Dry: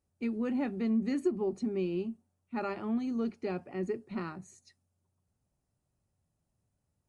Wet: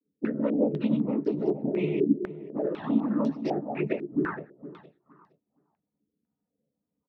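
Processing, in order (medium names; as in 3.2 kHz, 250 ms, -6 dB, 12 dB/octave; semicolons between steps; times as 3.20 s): local Wiener filter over 15 samples; level-controlled noise filter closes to 430 Hz, open at -28.5 dBFS; bass shelf 260 Hz -7 dB; in parallel at 0 dB: peak limiter -32.5 dBFS, peak gain reduction 10 dB; on the sum: noise-vocoded speech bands 12; doubling 14 ms -8 dB; touch-sensitive flanger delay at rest 4.1 ms, full sweep at -26.5 dBFS; 0.54–1.46 s: distance through air 220 m; feedback delay 465 ms, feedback 21%, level -12.5 dB; step-sequenced low-pass 4 Hz 360–5100 Hz; trim +3.5 dB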